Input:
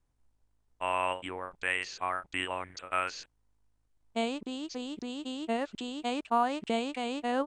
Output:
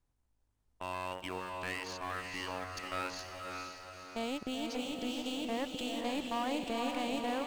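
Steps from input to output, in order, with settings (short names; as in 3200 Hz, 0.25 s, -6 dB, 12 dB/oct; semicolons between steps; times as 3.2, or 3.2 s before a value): tube stage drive 25 dB, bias 0.6; in parallel at -7 dB: sample gate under -36 dBFS; on the sum: limiter -27 dBFS, peak gain reduction 8.5 dB; diffused feedback echo 0.481 s, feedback 53%, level -3.5 dB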